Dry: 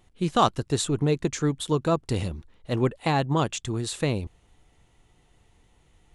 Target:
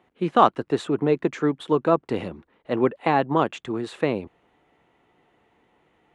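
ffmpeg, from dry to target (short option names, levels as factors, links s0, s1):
-filter_complex "[0:a]highpass=52,acrossover=split=200 2700:gain=0.1 1 0.0794[s0][s1][s2];[s0][s1][s2]amix=inputs=3:normalize=0,volume=1.78"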